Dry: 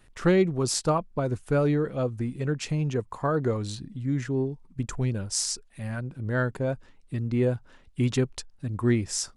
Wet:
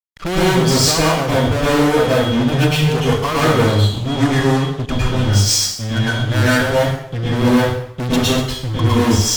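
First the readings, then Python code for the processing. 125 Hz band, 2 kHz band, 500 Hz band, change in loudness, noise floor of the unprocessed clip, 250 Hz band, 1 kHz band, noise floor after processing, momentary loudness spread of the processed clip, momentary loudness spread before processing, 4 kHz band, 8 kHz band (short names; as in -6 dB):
+12.0 dB, +16.0 dB, +10.5 dB, +12.0 dB, -57 dBFS, +11.5 dB, +15.0 dB, -30 dBFS, 7 LU, 11 LU, +18.0 dB, +12.0 dB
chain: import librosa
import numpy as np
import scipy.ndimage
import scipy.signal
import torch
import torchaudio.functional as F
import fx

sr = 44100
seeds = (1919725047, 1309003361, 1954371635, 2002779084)

y = fx.bin_expand(x, sr, power=1.5)
y = fx.env_lowpass(y, sr, base_hz=1200.0, full_db=-20.5)
y = y + 10.0 ** (-58.0 / 20.0) * np.sin(2.0 * np.pi * 3300.0 * np.arange(len(y)) / sr)
y = fx.fuzz(y, sr, gain_db=41.0, gate_db=-48.0)
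y = fx.rev_plate(y, sr, seeds[0], rt60_s=0.72, hf_ratio=0.9, predelay_ms=95, drr_db=-7.5)
y = y * 10.0 ** (-6.5 / 20.0)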